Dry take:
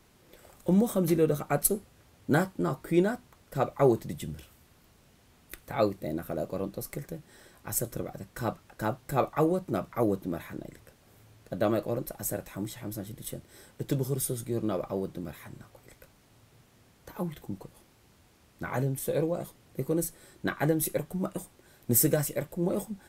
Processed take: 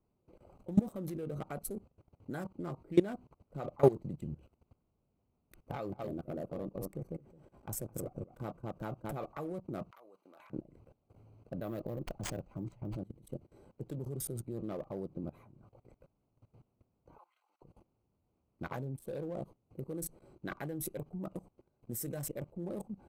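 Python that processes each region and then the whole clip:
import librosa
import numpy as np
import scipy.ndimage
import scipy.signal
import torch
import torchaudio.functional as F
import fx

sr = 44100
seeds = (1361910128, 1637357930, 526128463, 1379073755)

y = fx.chain(x, sr, fx.notch(hz=4100.0, q=10.0),
    fx.echo_single(ms=215, db=-7.0), at=(5.59, 9.17))
y = fx.chain(y, sr, fx.highpass(hz=1300.0, slope=12),
    fx.band_squash(depth_pct=100), at=(9.91, 10.5))
y = fx.chain(y, sr, fx.resample_bad(factor=3, down='none', up='hold'),
    fx.low_shelf(hz=150.0, db=8.0), at=(11.58, 12.97))
y = fx.chain(y, sr, fx.highpass(hz=1100.0, slope=24),
    fx.high_shelf(hz=10000.0, db=-9.0), at=(17.18, 17.62))
y = fx.wiener(y, sr, points=25)
y = fx.level_steps(y, sr, step_db=20)
y = y * 10.0 ** (1.0 / 20.0)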